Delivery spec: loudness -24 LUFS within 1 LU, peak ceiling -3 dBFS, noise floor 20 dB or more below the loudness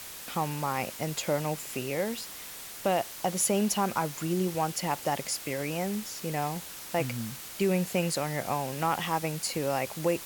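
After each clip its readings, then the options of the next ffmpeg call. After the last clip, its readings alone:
noise floor -43 dBFS; noise floor target -51 dBFS; loudness -30.5 LUFS; peak -14.5 dBFS; loudness target -24.0 LUFS
-> -af "afftdn=nr=8:nf=-43"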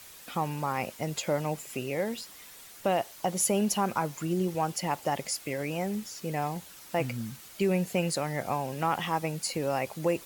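noise floor -50 dBFS; noise floor target -51 dBFS
-> -af "afftdn=nr=6:nf=-50"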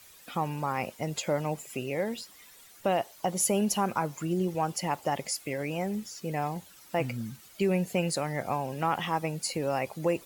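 noise floor -54 dBFS; loudness -31.0 LUFS; peak -15.0 dBFS; loudness target -24.0 LUFS
-> -af "volume=7dB"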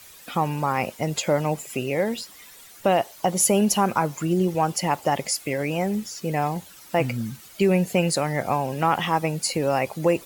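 loudness -24.0 LUFS; peak -8.0 dBFS; noise floor -47 dBFS

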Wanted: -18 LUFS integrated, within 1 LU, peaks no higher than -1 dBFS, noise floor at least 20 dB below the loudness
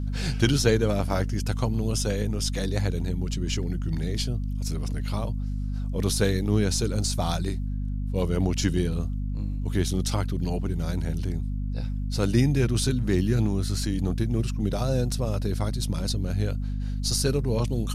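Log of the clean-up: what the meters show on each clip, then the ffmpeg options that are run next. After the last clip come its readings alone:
hum 50 Hz; harmonics up to 250 Hz; hum level -26 dBFS; loudness -27.0 LUFS; peak -6.5 dBFS; loudness target -18.0 LUFS
-> -af "bandreject=f=50:t=h:w=4,bandreject=f=100:t=h:w=4,bandreject=f=150:t=h:w=4,bandreject=f=200:t=h:w=4,bandreject=f=250:t=h:w=4"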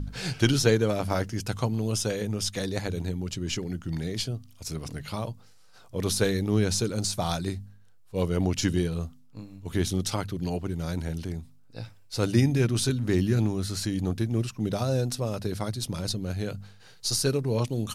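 hum none; loudness -28.5 LUFS; peak -7.0 dBFS; loudness target -18.0 LUFS
-> -af "volume=10.5dB,alimiter=limit=-1dB:level=0:latency=1"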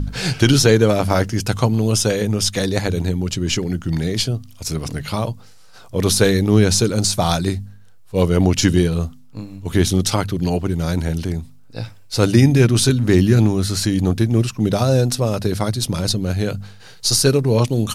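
loudness -18.0 LUFS; peak -1.0 dBFS; noise floor -42 dBFS

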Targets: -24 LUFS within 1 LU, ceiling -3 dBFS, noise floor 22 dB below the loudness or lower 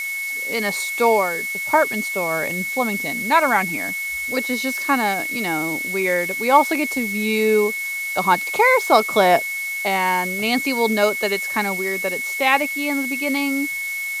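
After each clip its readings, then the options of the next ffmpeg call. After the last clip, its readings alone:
steady tone 2200 Hz; tone level -24 dBFS; noise floor -27 dBFS; noise floor target -42 dBFS; loudness -19.5 LUFS; peak -1.5 dBFS; loudness target -24.0 LUFS
-> -af "bandreject=f=2.2k:w=30"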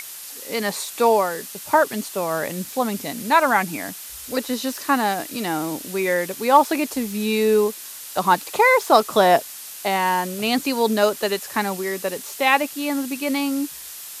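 steady tone none; noise floor -37 dBFS; noise floor target -43 dBFS
-> -af "afftdn=nr=6:nf=-37"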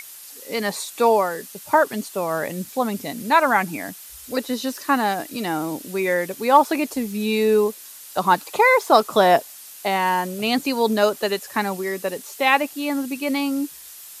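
noise floor -41 dBFS; noise floor target -44 dBFS
-> -af "afftdn=nr=6:nf=-41"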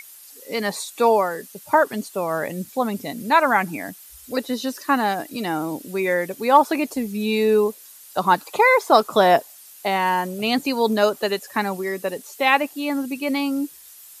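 noise floor -45 dBFS; loudness -21.5 LUFS; peak -2.5 dBFS; loudness target -24.0 LUFS
-> -af "volume=-2.5dB"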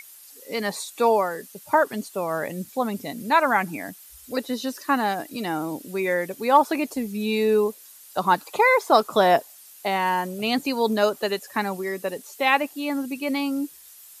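loudness -24.0 LUFS; peak -5.0 dBFS; noise floor -48 dBFS

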